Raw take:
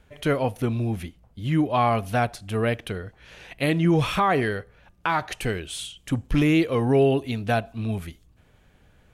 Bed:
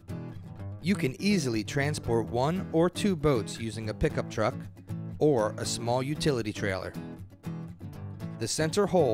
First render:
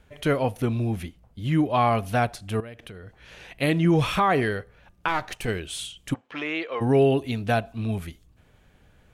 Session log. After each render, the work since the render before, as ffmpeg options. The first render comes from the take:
-filter_complex "[0:a]asettb=1/sr,asplit=3[s0][s1][s2];[s0]atrim=end=2.604[s3];[s1]atrim=start=2.6:end=3.57,asetpts=PTS-STARTPTS,afade=t=in:d=0.004:c=qsin,afade=t=out:st=0.966:d=0.004:c=qsin,acompressor=threshold=0.0126:ratio=6:attack=3.2:release=140:knee=1:detection=peak[s4];[s2]atrim=start=3.566[s5];[s3][s4]acrossfade=d=0.004:c1=hsin:c2=qsin[s6];[s6][s5]acrossfade=d=0.004:c1=qsin:c2=hsin,asettb=1/sr,asplit=3[s7][s8][s9];[s7]atrim=end=5.084[s10];[s8]atrim=start=5.08:end=5.48,asetpts=PTS-STARTPTS,afade=t=in:d=0.004:c=qsin,afade=t=out:st=0.396:d=0.004:c=qsin,aeval=exprs='if(lt(val(0),0),0.447*val(0),val(0))':c=same[s11];[s9]atrim=start=5.476[s12];[s10][s11]acrossfade=d=0.004:c1=hsin:c2=qsin[s13];[s13][s12]acrossfade=d=0.004:c1=qsin:c2=hsin,asplit=3[s14][s15][s16];[s14]afade=t=out:st=6.13:d=0.02[s17];[s15]highpass=660,lowpass=3000,afade=t=in:st=6.13:d=0.02,afade=t=out:st=6.8:d=0.02[s18];[s16]afade=t=in:st=6.8:d=0.02[s19];[s17][s18][s19]amix=inputs=3:normalize=0"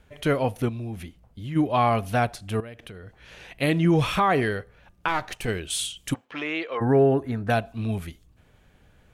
-filter_complex "[0:a]asplit=3[s0][s1][s2];[s0]afade=t=out:st=0.68:d=0.02[s3];[s1]acompressor=threshold=0.0158:ratio=2:attack=3.2:release=140:knee=1:detection=peak,afade=t=in:st=0.68:d=0.02,afade=t=out:st=1.55:d=0.02[s4];[s2]afade=t=in:st=1.55:d=0.02[s5];[s3][s4][s5]amix=inputs=3:normalize=0,asettb=1/sr,asplit=3[s6][s7][s8];[s6]atrim=end=5.704[s9];[s7]atrim=start=5.7:end=6.25,asetpts=PTS-STARTPTS,afade=t=in:d=0.004:c=qsin,afade=t=out:st=0.546:d=0.004:c=qsin,highshelf=f=3100:g=8[s10];[s8]atrim=start=6.246[s11];[s9][s10]acrossfade=d=0.004:c1=hsin:c2=qsin[s12];[s12][s11]acrossfade=d=0.004:c1=qsin:c2=hsin,asettb=1/sr,asplit=3[s13][s14][s15];[s13]atrim=end=6.774[s16];[s14]atrim=start=6.77:end=7.5,asetpts=PTS-STARTPTS,afade=t=in:d=0.004:c=qsin,afade=t=out:st=0.726:d=0.004:c=qsin,highshelf=f=2100:t=q:w=3:g=-9.5[s17];[s15]atrim=start=7.496[s18];[s16][s17]acrossfade=d=0.004:c1=hsin:c2=qsin[s19];[s19][s18]acrossfade=d=0.004:c1=qsin:c2=hsin"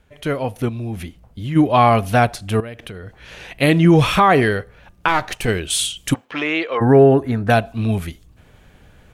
-af "dynaudnorm=f=480:g=3:m=2.99"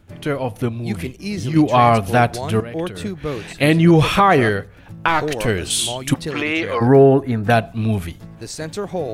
-filter_complex "[1:a]volume=0.944[s0];[0:a][s0]amix=inputs=2:normalize=0"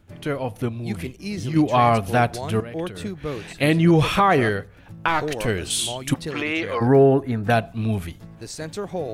-af "volume=0.631"

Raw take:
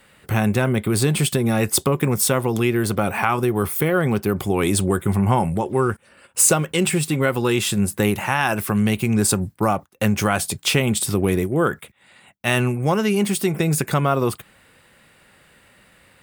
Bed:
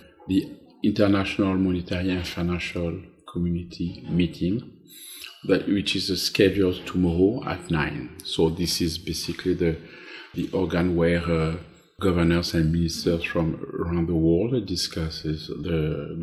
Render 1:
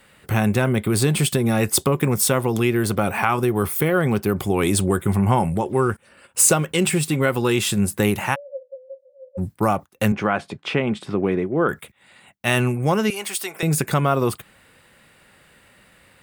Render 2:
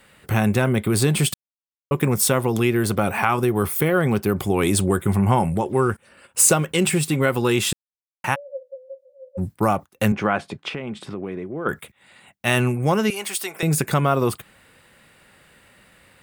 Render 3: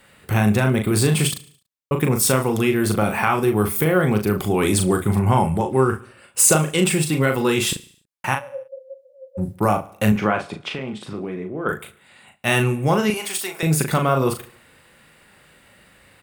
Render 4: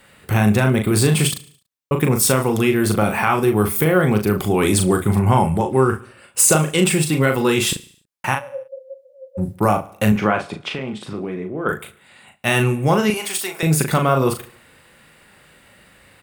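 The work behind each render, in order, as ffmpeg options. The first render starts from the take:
-filter_complex "[0:a]asplit=3[s0][s1][s2];[s0]afade=t=out:st=8.34:d=0.02[s3];[s1]asuperpass=centerf=540:order=20:qfactor=7.4,afade=t=in:st=8.34:d=0.02,afade=t=out:st=9.37:d=0.02[s4];[s2]afade=t=in:st=9.37:d=0.02[s5];[s3][s4][s5]amix=inputs=3:normalize=0,asettb=1/sr,asplit=3[s6][s7][s8];[s6]atrim=end=10.124[s9];[s7]atrim=start=10.12:end=11.69,asetpts=PTS-STARTPTS,afade=t=in:d=0.004:c=qsin,afade=t=out:st=1.566:d=0.004:c=qsin,highpass=170,lowpass=2100[s10];[s8]atrim=start=11.686[s11];[s9][s10]acrossfade=d=0.004:c1=hsin:c2=qsin[s12];[s12][s11]acrossfade=d=0.004:c1=qsin:c2=hsin,asettb=1/sr,asplit=3[s13][s14][s15];[s13]atrim=end=13.104[s16];[s14]atrim=start=13.1:end=13.63,asetpts=PTS-STARTPTS,afade=t=in:d=0.004:c=qsin,afade=t=out:st=0.526:d=0.004:c=qsin,highpass=750[s17];[s15]atrim=start=13.626[s18];[s16][s17]acrossfade=d=0.004:c1=hsin:c2=qsin[s19];[s19][s18]acrossfade=d=0.004:c1=qsin:c2=hsin"
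-filter_complex "[0:a]asplit=3[s0][s1][s2];[s0]afade=t=out:st=10.68:d=0.02[s3];[s1]acompressor=threshold=0.0316:ratio=2.5:attack=3.2:release=140:knee=1:detection=peak,afade=t=in:st=10.68:d=0.02,afade=t=out:st=11.65:d=0.02[s4];[s2]afade=t=in:st=11.65:d=0.02[s5];[s3][s4][s5]amix=inputs=3:normalize=0,asplit=5[s6][s7][s8][s9][s10];[s6]atrim=end=1.34,asetpts=PTS-STARTPTS,afade=t=out:st=1.336:d=0.004:c=hsin[s11];[s7]atrim=start=1.34:end=1.91,asetpts=PTS-STARTPTS,volume=0[s12];[s8]atrim=start=1.91:end=7.73,asetpts=PTS-STARTPTS,afade=t=in:d=0.004:c=hsin,afade=t=out:st=5.816:d=0.004:c=hsin[s13];[s9]atrim=start=7.73:end=8.24,asetpts=PTS-STARTPTS,volume=0[s14];[s10]atrim=start=8.24,asetpts=PTS-STARTPTS,afade=t=in:d=0.004:c=hsin[s15];[s11][s12][s13][s14][s15]concat=n=5:v=0:a=1"
-filter_complex "[0:a]asplit=2[s0][s1];[s1]adelay=38,volume=0.531[s2];[s0][s2]amix=inputs=2:normalize=0,aecho=1:1:72|144|216|288:0.106|0.0498|0.0234|0.011"
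-af "volume=1.26,alimiter=limit=0.708:level=0:latency=1"

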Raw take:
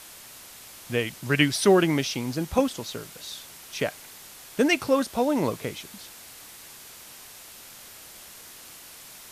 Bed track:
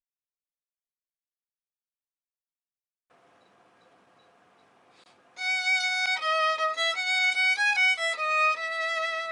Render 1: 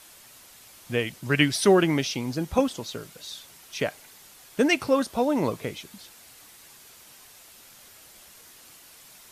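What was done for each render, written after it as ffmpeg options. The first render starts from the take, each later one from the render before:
-af "afftdn=nr=6:nf=-46"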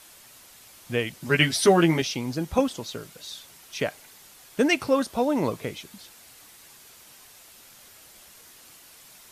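-filter_complex "[0:a]asettb=1/sr,asplit=3[s0][s1][s2];[s0]atrim=end=1.194[s3];[s1]atrim=start=1.19:end=2.02,asetpts=PTS-STARTPTS,afade=t=in:d=0.004:c=qsin,afade=t=out:st=0.826:d=0.004:c=qsin,asplit=2[s4][s5];[s5]adelay=12,volume=0.708[s6];[s4][s6]amix=inputs=2:normalize=0,atrim=end_sample=36603[s7];[s2]atrim=start=2.016[s8];[s3][s7]acrossfade=d=0.004:c1=hsin:c2=qsin[s9];[s9][s8]acrossfade=d=0.004:c1=qsin:c2=hsin"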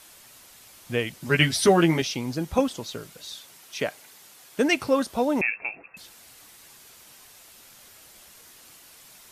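-filter_complex "[0:a]asettb=1/sr,asplit=3[s0][s1][s2];[s0]atrim=end=1.234[s3];[s1]atrim=start=1.23:end=1.69,asetpts=PTS-STARTPTS,afade=t=in:d=0.004:c=qsin,afade=t=out:st=0.456:d=0.004:c=qsin,asubboost=boost=8.5:cutoff=240[s4];[s2]atrim=start=1.686[s5];[s3][s4]acrossfade=d=0.004:c1=hsin:c2=qsin[s6];[s6][s5]acrossfade=d=0.004:c1=qsin:c2=hsin,asettb=1/sr,asplit=3[s7][s8][s9];[s7]atrim=end=3.354[s10];[s8]atrim=start=3.35:end=4.69,asetpts=PTS-STARTPTS,afade=t=in:d=0.004:c=qsin,afade=t=out:st=1.336:d=0.004:c=qsin,highpass=f=160:p=1[s11];[s9]atrim=start=4.686[s12];[s10][s11]acrossfade=d=0.004:c1=hsin:c2=qsin[s13];[s13][s12]acrossfade=d=0.004:c1=qsin:c2=hsin,asettb=1/sr,asplit=3[s14][s15][s16];[s14]atrim=end=5.414[s17];[s15]atrim=start=5.41:end=5.97,asetpts=PTS-STARTPTS,afade=t=in:d=0.004:c=qsin,afade=t=out:st=0.556:d=0.004:c=qsin,lowpass=f=2400:t=q:w=0.5098,lowpass=f=2400:t=q:w=0.6013,lowpass=f=2400:t=q:w=0.9,lowpass=f=2400:t=q:w=2.563,afreqshift=-2800[s18];[s16]atrim=start=5.966[s19];[s17][s18]acrossfade=d=0.004:c1=hsin:c2=qsin[s20];[s20][s19]acrossfade=d=0.004:c1=qsin:c2=hsin"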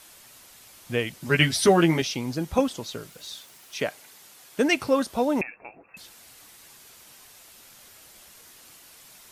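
-filter_complex "[0:a]asettb=1/sr,asplit=3[s0][s1][s2];[s0]atrim=end=3.094[s3];[s1]atrim=start=3.09:end=3.79,asetpts=PTS-STARTPTS,afade=t=in:d=0.004:c=qsin,afade=t=out:st=0.696:d=0.004:c=qsin,aeval=exprs='val(0)*gte(abs(val(0)),0.00237)':c=same[s4];[s2]atrim=start=3.786[s5];[s3][s4]acrossfade=d=0.004:c1=hsin:c2=qsin[s6];[s6][s5]acrossfade=d=0.004:c1=qsin:c2=hsin,asplit=3[s7][s8][s9];[s7]afade=t=out:st=5.42:d=0.02[s10];[s8]lowpass=1000,afade=t=in:st=5.42:d=0.02,afade=t=out:st=5.87:d=0.02[s11];[s9]afade=t=in:st=5.87:d=0.02[s12];[s10][s11][s12]amix=inputs=3:normalize=0"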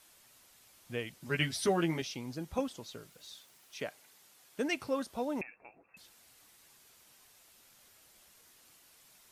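-af "volume=0.266"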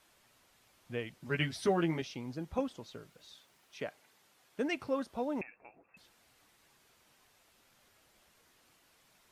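-af "highshelf=f=4500:g=-11.5"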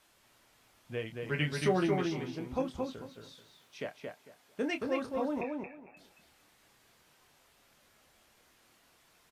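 -filter_complex "[0:a]asplit=2[s0][s1];[s1]adelay=27,volume=0.398[s2];[s0][s2]amix=inputs=2:normalize=0,asplit=2[s3][s4];[s4]adelay=225,lowpass=f=3200:p=1,volume=0.668,asplit=2[s5][s6];[s6]adelay=225,lowpass=f=3200:p=1,volume=0.21,asplit=2[s7][s8];[s8]adelay=225,lowpass=f=3200:p=1,volume=0.21[s9];[s3][s5][s7][s9]amix=inputs=4:normalize=0"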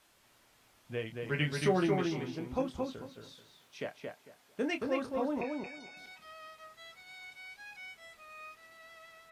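-filter_complex "[1:a]volume=0.0531[s0];[0:a][s0]amix=inputs=2:normalize=0"

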